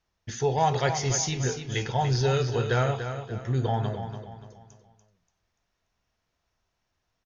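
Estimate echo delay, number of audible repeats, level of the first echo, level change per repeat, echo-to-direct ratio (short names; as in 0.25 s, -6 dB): 0.29 s, 4, -9.0 dB, -8.5 dB, -8.5 dB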